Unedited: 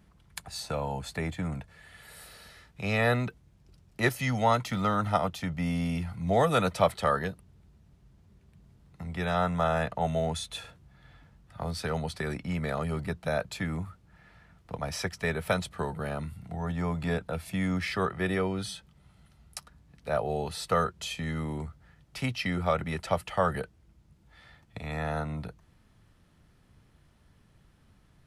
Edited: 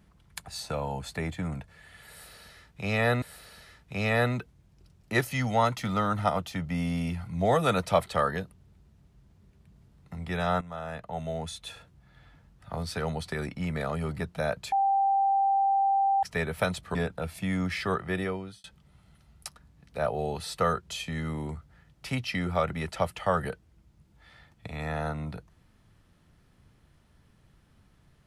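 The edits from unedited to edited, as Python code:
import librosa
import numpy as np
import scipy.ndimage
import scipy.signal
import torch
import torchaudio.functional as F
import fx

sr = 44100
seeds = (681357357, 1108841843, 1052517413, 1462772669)

y = fx.edit(x, sr, fx.repeat(start_s=2.1, length_s=1.12, count=2),
    fx.fade_in_from(start_s=9.49, length_s=2.27, curve='qsin', floor_db=-15.0),
    fx.bleep(start_s=13.6, length_s=1.51, hz=786.0, db=-21.0),
    fx.cut(start_s=15.83, length_s=1.23),
    fx.fade_out_span(start_s=18.03, length_s=0.72, curve='qsin'), tone=tone)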